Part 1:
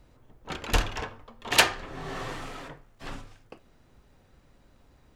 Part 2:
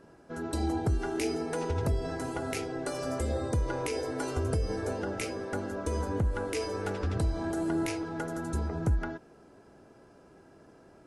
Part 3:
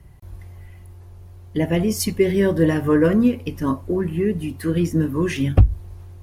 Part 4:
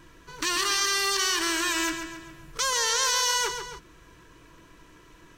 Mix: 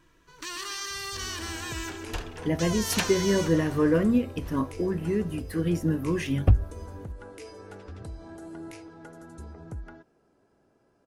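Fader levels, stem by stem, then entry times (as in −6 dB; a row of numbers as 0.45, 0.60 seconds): −10.5, −11.0, −6.0, −10.0 decibels; 1.40, 0.85, 0.90, 0.00 seconds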